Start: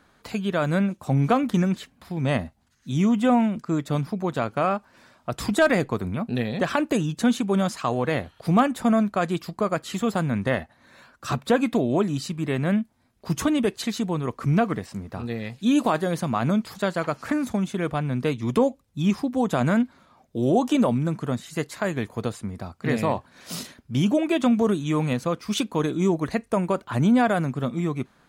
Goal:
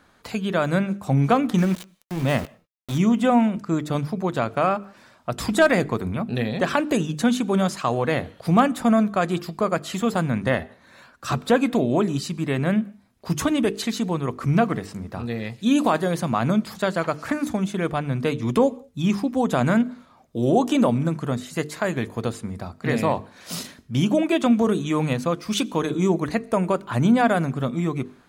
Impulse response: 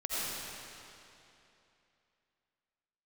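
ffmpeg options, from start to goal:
-filter_complex "[0:a]bandreject=f=50:t=h:w=6,bandreject=f=100:t=h:w=6,bandreject=f=150:t=h:w=6,bandreject=f=200:t=h:w=6,bandreject=f=250:t=h:w=6,bandreject=f=300:t=h:w=6,bandreject=f=350:t=h:w=6,bandreject=f=400:t=h:w=6,bandreject=f=450:t=h:w=6,asplit=3[a][b][c];[a]afade=t=out:st=1.57:d=0.02[d];[b]aeval=exprs='val(0)*gte(abs(val(0)),0.0251)':c=same,afade=t=in:st=1.57:d=0.02,afade=t=out:st=2.97:d=0.02[e];[c]afade=t=in:st=2.97:d=0.02[f];[d][e][f]amix=inputs=3:normalize=0,asplit=2[g][h];[1:a]atrim=start_sample=2205,afade=t=out:st=0.25:d=0.01,atrim=end_sample=11466[i];[h][i]afir=irnorm=-1:irlink=0,volume=-28.5dB[j];[g][j]amix=inputs=2:normalize=0,volume=2dB"

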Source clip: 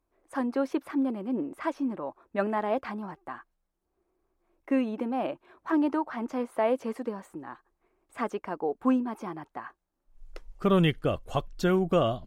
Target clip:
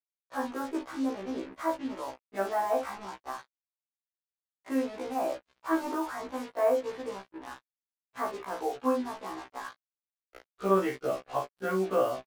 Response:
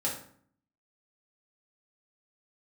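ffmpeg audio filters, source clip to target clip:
-filter_complex "[0:a]acrossover=split=220 2700:gain=0.224 1 0.0708[a][b][c];[a][b][c]amix=inputs=3:normalize=0,asplit=2[d][e];[e]aecho=0:1:37|60:0.473|0.211[f];[d][f]amix=inputs=2:normalize=0,asettb=1/sr,asplit=3[g][h][i];[g]atrim=end=5.324[j];[h]atrim=start=5.32:end=5.95,asetpts=PTS-STARTPTS,afade=t=in:d=0.004:c=qsin,afade=t=out:st=0.626:d=0.004:c=qsin,aeval=exprs='0.15*(cos(1*acos(clip(val(0)/0.15,-1,1)))-cos(1*PI/2))+0.0119*(cos(5*acos(clip(val(0)/0.15,-1,1)))-cos(5*PI/2))':c=same[k];[i]atrim=start=5.946[l];[j][k]acrossfade=d=0.004:c1=hsin:c2=qsin[m];[m][l]acrossfade=d=0.004:c1=qsin:c2=hsin,acrossover=split=2200[n][o];[o]acompressor=threshold=-59dB:ratio=6[p];[n][p]amix=inputs=2:normalize=0,lowshelf=f=310:g=-11,acontrast=90,acrusher=bits=5:mix=0:aa=0.5,afftfilt=real='re*1.73*eq(mod(b,3),0)':imag='im*1.73*eq(mod(b,3),0)':win_size=2048:overlap=0.75,volume=-4dB"

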